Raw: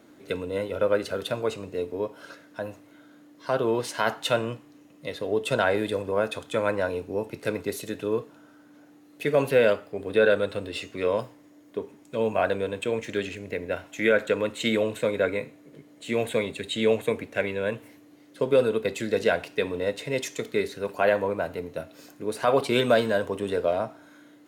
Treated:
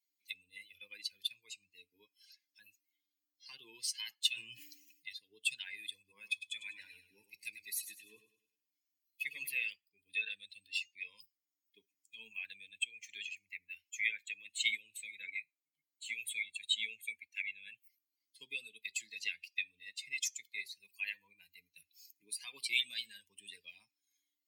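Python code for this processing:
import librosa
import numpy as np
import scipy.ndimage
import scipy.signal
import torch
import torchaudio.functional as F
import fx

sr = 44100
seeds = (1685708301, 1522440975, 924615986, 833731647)

y = fx.sustainer(x, sr, db_per_s=35.0, at=(4.29, 5.13))
y = fx.echo_feedback(y, sr, ms=100, feedback_pct=55, wet_db=-6.5, at=(5.99, 9.52))
y = fx.bin_expand(y, sr, power=2.0)
y = scipy.signal.sosfilt(scipy.signal.ellip(4, 1.0, 40, 2200.0, 'highpass', fs=sr, output='sos'), y)
y = fx.band_squash(y, sr, depth_pct=40)
y = y * librosa.db_to_amplitude(5.5)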